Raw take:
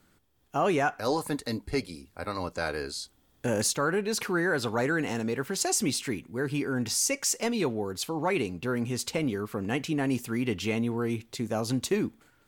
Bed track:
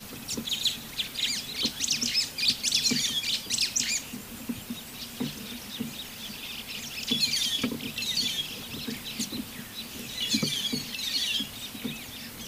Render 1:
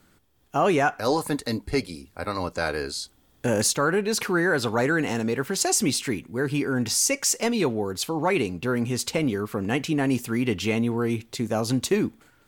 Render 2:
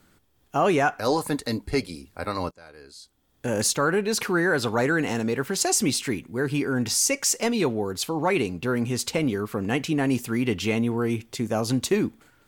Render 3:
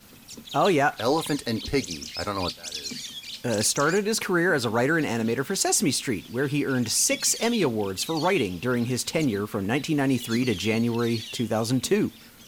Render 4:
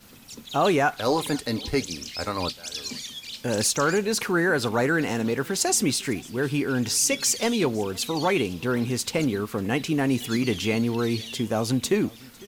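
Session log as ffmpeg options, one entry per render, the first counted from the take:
ffmpeg -i in.wav -af "volume=4.5dB" out.wav
ffmpeg -i in.wav -filter_complex "[0:a]asettb=1/sr,asplit=3[link_01][link_02][link_03];[link_01]atrim=end=10.784[link_04];[link_02]atrim=start=10.78:end=11.66,asetpts=PTS-STARTPTS,afade=type=in:duration=0.004:curve=qsin,afade=type=out:start_time=0.876:duration=0.004:curve=qsin,bandreject=frequency=4000:width=12[link_05];[link_03]atrim=start=11.656[link_06];[link_04][link_05]acrossfade=duration=0.004:curve1=hsin:curve2=qsin[link_07];[link_07][link_06]acrossfade=duration=0.004:curve1=qsin:curve2=hsin,asplit=2[link_08][link_09];[link_08]atrim=end=2.51,asetpts=PTS-STARTPTS,afade=type=out:start_time=2.506:duration=0.004:curve=hsin:silence=0.0749894[link_10];[link_09]atrim=start=2.51,asetpts=PTS-STARTPTS,afade=type=in:duration=1.21:curve=qua:silence=0.0749894[link_11];[link_10][link_11]concat=n=2:v=0:a=1" out.wav
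ffmpeg -i in.wav -i bed.wav -filter_complex "[1:a]volume=-9dB[link_01];[0:a][link_01]amix=inputs=2:normalize=0" out.wav
ffmpeg -i in.wav -af "aecho=1:1:503:0.0631" out.wav

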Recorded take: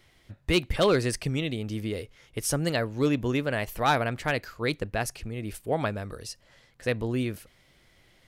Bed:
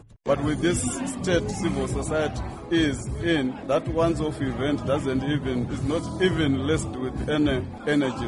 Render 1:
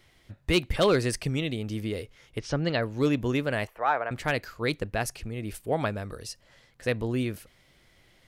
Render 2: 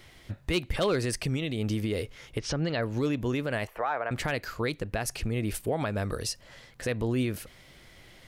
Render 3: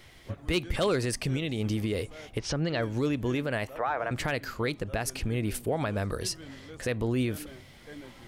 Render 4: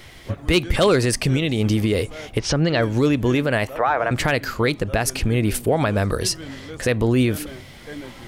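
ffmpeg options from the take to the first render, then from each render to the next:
ffmpeg -i in.wav -filter_complex "[0:a]asplit=3[link_01][link_02][link_03];[link_01]afade=type=out:start_time=2.38:duration=0.02[link_04];[link_02]lowpass=frequency=4700:width=0.5412,lowpass=frequency=4700:width=1.3066,afade=type=in:start_time=2.38:duration=0.02,afade=type=out:start_time=2.81:duration=0.02[link_05];[link_03]afade=type=in:start_time=2.81:duration=0.02[link_06];[link_04][link_05][link_06]amix=inputs=3:normalize=0,asettb=1/sr,asplit=3[link_07][link_08][link_09];[link_07]atrim=end=3.674[link_10];[link_08]atrim=start=3.67:end=4.11,asetpts=PTS-STARTPTS,afade=type=in:duration=0.004:curve=qsin,afade=type=out:start_time=0.436:duration=0.004:curve=qsin,acrossover=split=440 2100:gain=0.0891 1 0.0631[link_11][link_12][link_13];[link_11][link_12][link_13]amix=inputs=3:normalize=0[link_14];[link_09]atrim=start=4.106[link_15];[link_10][link_14]acrossfade=duration=0.004:curve1=hsin:curve2=qsin[link_16];[link_16][link_15]acrossfade=duration=0.004:curve1=qsin:curve2=hsin" out.wav
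ffmpeg -i in.wav -filter_complex "[0:a]asplit=2[link_01][link_02];[link_02]acompressor=threshold=-34dB:ratio=6,volume=3dB[link_03];[link_01][link_03]amix=inputs=2:normalize=0,alimiter=limit=-19.5dB:level=0:latency=1:release=119" out.wav
ffmpeg -i in.wav -i bed.wav -filter_complex "[1:a]volume=-23dB[link_01];[0:a][link_01]amix=inputs=2:normalize=0" out.wav
ffmpeg -i in.wav -af "volume=10dB" out.wav

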